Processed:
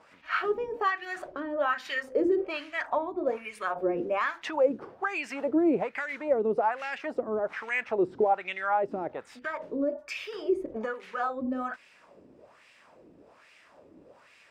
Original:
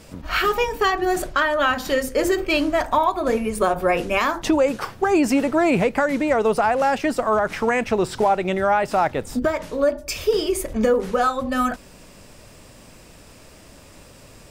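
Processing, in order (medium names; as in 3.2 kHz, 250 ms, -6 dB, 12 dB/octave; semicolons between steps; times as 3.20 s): dynamic bell 840 Hz, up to -4 dB, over -27 dBFS, Q 0.74; LFO band-pass sine 1.2 Hz 300–2400 Hz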